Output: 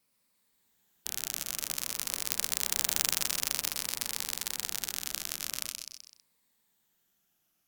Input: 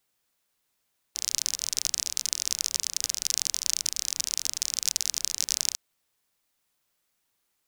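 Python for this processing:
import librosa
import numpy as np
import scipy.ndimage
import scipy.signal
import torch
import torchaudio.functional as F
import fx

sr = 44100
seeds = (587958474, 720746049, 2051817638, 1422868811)

p1 = fx.spec_ripple(x, sr, per_octave=0.96, drift_hz=-0.47, depth_db=6)
p2 = fx.doppler_pass(p1, sr, speed_mps=28, closest_m=2.7, pass_at_s=2.98)
p3 = fx.peak_eq(p2, sr, hz=200.0, db=9.5, octaves=0.89)
p4 = fx.level_steps(p3, sr, step_db=23)
p5 = p3 + (p4 * librosa.db_to_amplitude(-2.0))
p6 = fx.peak_eq(p5, sr, hz=15000.0, db=5.0, octaves=0.44)
p7 = p6 + fx.echo_feedback(p6, sr, ms=127, feedback_pct=41, wet_db=-10, dry=0)
y = fx.spectral_comp(p7, sr, ratio=4.0)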